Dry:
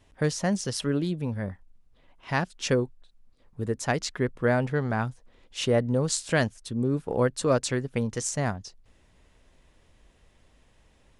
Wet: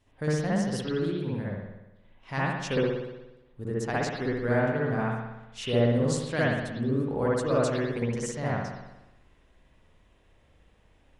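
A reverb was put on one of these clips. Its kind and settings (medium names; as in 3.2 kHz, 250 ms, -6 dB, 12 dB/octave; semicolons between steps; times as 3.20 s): spring tank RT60 1 s, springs 59 ms, chirp 55 ms, DRR -6.5 dB; trim -8 dB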